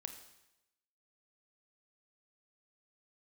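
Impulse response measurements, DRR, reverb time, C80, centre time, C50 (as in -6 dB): 6.0 dB, 0.90 s, 11.0 dB, 17 ms, 8.5 dB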